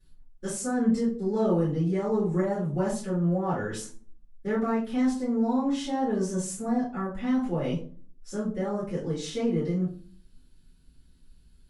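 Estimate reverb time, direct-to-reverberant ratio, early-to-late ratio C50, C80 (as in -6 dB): 0.40 s, -11.0 dB, 6.5 dB, 12.5 dB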